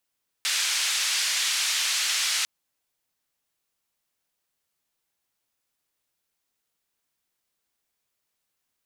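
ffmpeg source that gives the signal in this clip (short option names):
-f lavfi -i "anoisesrc=c=white:d=2:r=44100:seed=1,highpass=f=1900,lowpass=f=6300,volume=-13.9dB"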